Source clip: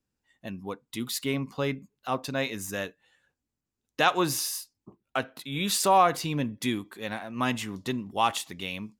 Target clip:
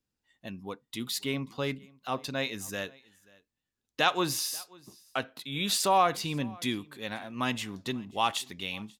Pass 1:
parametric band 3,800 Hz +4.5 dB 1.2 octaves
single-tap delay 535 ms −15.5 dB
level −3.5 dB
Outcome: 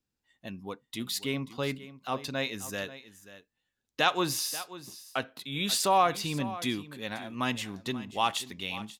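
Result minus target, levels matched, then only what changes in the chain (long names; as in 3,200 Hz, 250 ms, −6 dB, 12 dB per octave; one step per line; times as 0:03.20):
echo-to-direct +9.5 dB
change: single-tap delay 535 ms −25 dB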